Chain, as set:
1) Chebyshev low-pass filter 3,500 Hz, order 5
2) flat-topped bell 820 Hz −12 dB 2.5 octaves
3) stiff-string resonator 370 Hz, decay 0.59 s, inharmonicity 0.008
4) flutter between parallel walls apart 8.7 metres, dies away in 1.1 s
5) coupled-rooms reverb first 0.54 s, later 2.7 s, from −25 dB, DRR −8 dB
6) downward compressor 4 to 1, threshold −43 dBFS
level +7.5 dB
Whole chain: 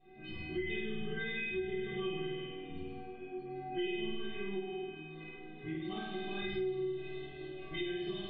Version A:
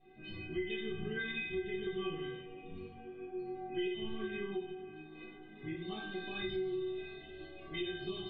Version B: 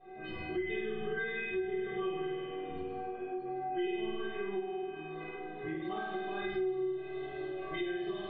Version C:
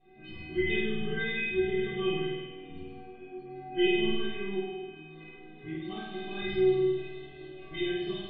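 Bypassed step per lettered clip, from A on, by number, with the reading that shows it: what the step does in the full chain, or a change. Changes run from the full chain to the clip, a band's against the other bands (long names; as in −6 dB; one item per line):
4, change in momentary loudness spread +2 LU
2, 1 kHz band +6.0 dB
6, change in momentary loudness spread +10 LU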